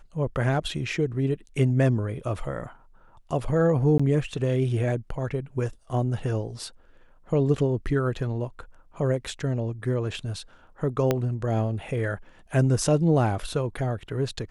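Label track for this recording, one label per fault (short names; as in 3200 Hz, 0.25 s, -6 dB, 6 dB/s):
3.980000	4.000000	gap 15 ms
11.110000	11.110000	pop -9 dBFS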